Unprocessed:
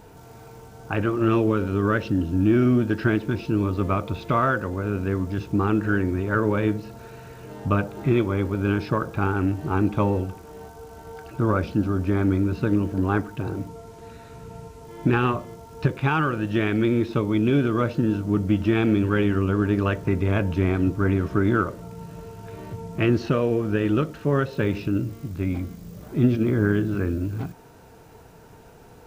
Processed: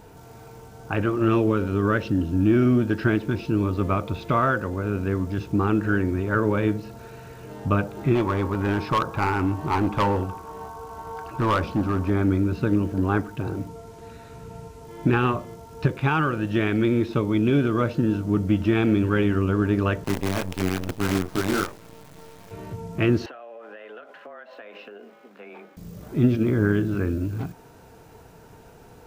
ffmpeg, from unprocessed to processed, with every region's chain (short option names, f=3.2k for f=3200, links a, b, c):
-filter_complex "[0:a]asettb=1/sr,asplit=3[a][b][c];[a]atrim=end=8.154[d];[b]atrim=start=8.15:end=12.1,asetpts=PTS-STARTPTS,afade=t=in:d=0.004:c=qsin,afade=t=out:st=3.946:d=0.004:c=qsin,equalizer=f=1k:w=2:g=11,aeval=exprs='val(0)+0.00631*sin(2*PI*1100*n/s)':c=same,asoftclip=type=hard:threshold=-17dB[e];[c]atrim=start=12.096[f];[d][e]acrossfade=d=0.004:c1=hsin:c2=qsin[g];[g][f]acrossfade=d=0.004:c1=qsin:c2=hsin,asettb=1/sr,asplit=3[h][i][j];[h]atrim=end=20.044[k];[i]atrim=start=20.04:end=22.51,asetpts=PTS-STARTPTS,afade=t=in:d=0.004:c=qsin,afade=t=out:st=2.466:d=0.004:c=qsin,highpass=110,flanger=delay=19.5:depth=2.8:speed=1.1,acrusher=bits=5:dc=4:mix=0:aa=0.000001[l];[j]atrim=start=22.506[m];[k][l]acrossfade=d=0.004:c1=hsin:c2=qsin[n];[n][m]acrossfade=d=0.004:c1=qsin:c2=hsin,asettb=1/sr,asplit=3[o][p][q];[o]atrim=end=23.264[r];[p]atrim=start=23.26:end=25.77,asetpts=PTS-STARTPTS,afade=t=in:d=0.004:c=qsin,afade=t=out:st=2.506:d=0.004:c=qsin,acrossover=split=460 3000:gain=0.0794 1 0.126[s][t][u];[s][t][u]amix=inputs=3:normalize=0,acompressor=threshold=-37dB:ratio=16:attack=3.2:release=140:knee=1:detection=peak,afreqshift=110[v];[q]atrim=start=25.766[w];[r][v]acrossfade=d=0.004:c1=hsin:c2=qsin[x];[x][w]acrossfade=d=0.004:c1=qsin:c2=hsin"